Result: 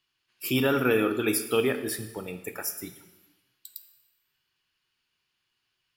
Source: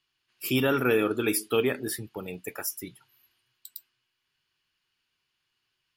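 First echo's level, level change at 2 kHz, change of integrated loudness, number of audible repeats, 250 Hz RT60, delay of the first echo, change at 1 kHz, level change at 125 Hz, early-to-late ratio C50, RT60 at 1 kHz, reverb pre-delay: none, +0.5 dB, +0.5 dB, none, 1.1 s, none, +0.5 dB, +0.5 dB, 11.0 dB, 1.1 s, 7 ms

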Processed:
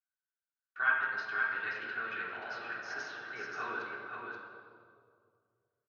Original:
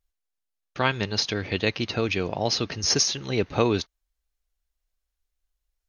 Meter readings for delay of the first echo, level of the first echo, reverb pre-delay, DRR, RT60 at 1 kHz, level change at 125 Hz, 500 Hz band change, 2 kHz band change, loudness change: 0.529 s, -3.5 dB, 3 ms, -8.5 dB, 2.1 s, -32.0 dB, -20.0 dB, +0.5 dB, -10.5 dB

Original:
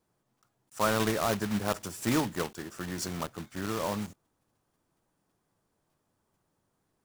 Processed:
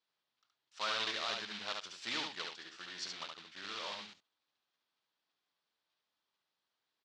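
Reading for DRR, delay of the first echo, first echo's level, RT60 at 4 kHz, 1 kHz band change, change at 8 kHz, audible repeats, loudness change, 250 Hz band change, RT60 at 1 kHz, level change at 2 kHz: none, 71 ms, -4.0 dB, none, -9.5 dB, -12.0 dB, 1, -8.0 dB, -22.0 dB, none, -4.5 dB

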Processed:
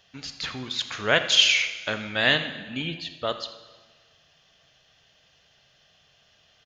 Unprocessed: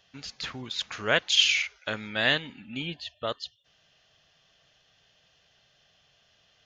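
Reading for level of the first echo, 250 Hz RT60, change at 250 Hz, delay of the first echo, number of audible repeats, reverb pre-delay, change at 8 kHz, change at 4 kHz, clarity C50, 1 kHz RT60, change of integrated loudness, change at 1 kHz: -16.5 dB, 1.5 s, +3.5 dB, 84 ms, 1, 6 ms, +3.5 dB, +3.5 dB, 10.0 dB, 1.4 s, +3.5 dB, +3.5 dB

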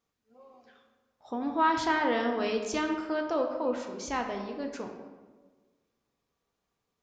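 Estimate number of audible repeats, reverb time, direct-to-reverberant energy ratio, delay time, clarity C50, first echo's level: none, 1.4 s, 3.0 dB, none, 6.0 dB, none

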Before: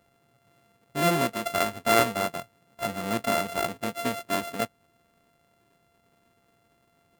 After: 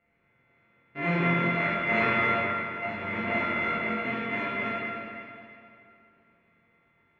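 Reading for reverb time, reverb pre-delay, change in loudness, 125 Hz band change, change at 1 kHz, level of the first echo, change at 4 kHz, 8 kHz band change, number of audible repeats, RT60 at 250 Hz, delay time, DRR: 2.6 s, 23 ms, 0.0 dB, +2.5 dB, -2.0 dB, none, -7.5 dB, under -30 dB, none, 2.6 s, none, -9.5 dB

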